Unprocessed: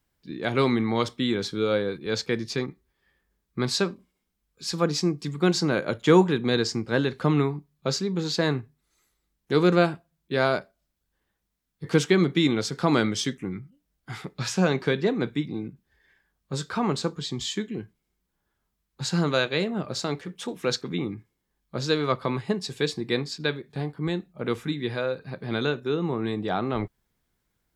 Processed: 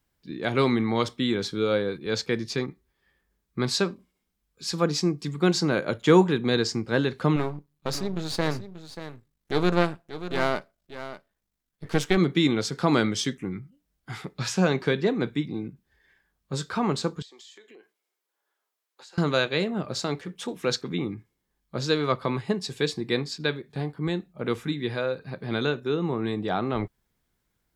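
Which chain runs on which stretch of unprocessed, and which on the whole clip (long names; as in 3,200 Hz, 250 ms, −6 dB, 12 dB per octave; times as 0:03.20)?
0:07.36–0:12.17: gain on one half-wave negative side −12 dB + single-tap delay 585 ms −12.5 dB
0:17.22–0:19.18: high-pass filter 420 Hz 24 dB per octave + downward compressor 8 to 1, threshold −47 dBFS
whole clip: no processing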